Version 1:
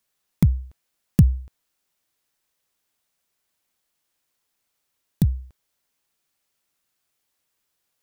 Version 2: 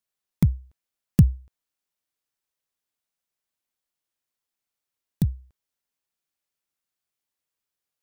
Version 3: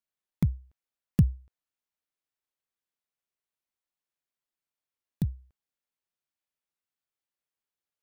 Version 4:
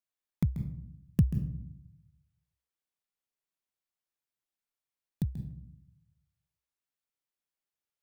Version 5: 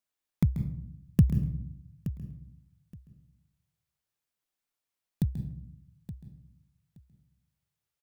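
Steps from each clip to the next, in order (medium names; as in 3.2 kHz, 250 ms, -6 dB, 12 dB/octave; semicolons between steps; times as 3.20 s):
upward expansion 1.5:1, over -31 dBFS
tone controls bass -1 dB, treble -5 dB; trim -5 dB
reverberation RT60 0.65 s, pre-delay 136 ms, DRR 9.5 dB; trim -3 dB
feedback delay 872 ms, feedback 18%, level -13.5 dB; trim +3.5 dB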